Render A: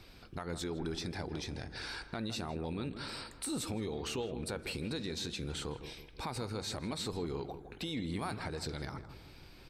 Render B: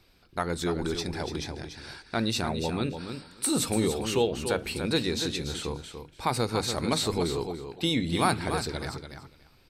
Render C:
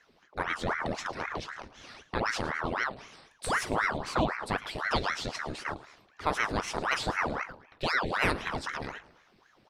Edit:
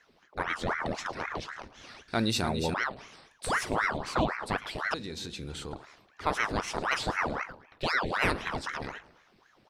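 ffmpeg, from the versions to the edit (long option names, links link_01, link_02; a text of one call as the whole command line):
ffmpeg -i take0.wav -i take1.wav -i take2.wav -filter_complex "[2:a]asplit=3[link_01][link_02][link_03];[link_01]atrim=end=2.082[link_04];[1:a]atrim=start=2.078:end=2.742[link_05];[link_02]atrim=start=2.738:end=4.942[link_06];[0:a]atrim=start=4.938:end=5.732[link_07];[link_03]atrim=start=5.728[link_08];[link_04][link_05]acrossfade=duration=0.004:curve1=hsin:curve2=hsin[link_09];[link_09][link_06]acrossfade=duration=0.004:curve1=hsin:curve2=hsin[link_10];[link_10][link_07]acrossfade=duration=0.004:curve1=hsin:curve2=hsin[link_11];[link_11][link_08]acrossfade=duration=0.004:curve1=hsin:curve2=hsin" out.wav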